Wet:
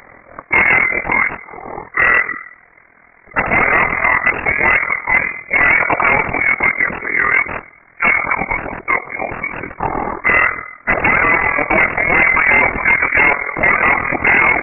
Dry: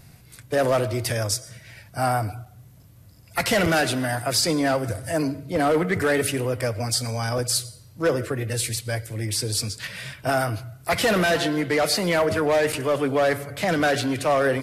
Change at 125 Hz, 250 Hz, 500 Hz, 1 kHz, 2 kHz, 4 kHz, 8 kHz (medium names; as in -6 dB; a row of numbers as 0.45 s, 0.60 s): -3.0 dB, -0.5 dB, -0.5 dB, +10.0 dB, +17.0 dB, under -10 dB, under -40 dB